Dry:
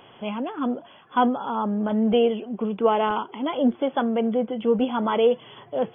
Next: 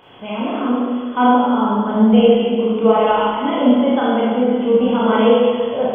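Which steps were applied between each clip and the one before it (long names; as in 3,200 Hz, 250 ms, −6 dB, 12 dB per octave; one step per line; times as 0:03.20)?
four-comb reverb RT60 1.8 s, combs from 25 ms, DRR −7.5 dB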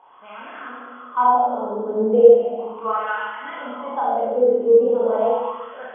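LFO wah 0.37 Hz 430–1,700 Hz, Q 5
level +4 dB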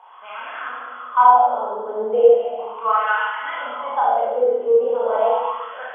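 high-pass filter 720 Hz 12 dB per octave
level +6 dB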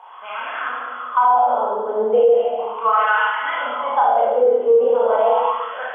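brickwall limiter −12 dBFS, peak gain reduction 10.5 dB
level +4.5 dB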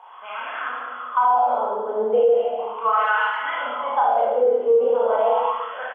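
far-end echo of a speakerphone 120 ms, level −30 dB
level −3 dB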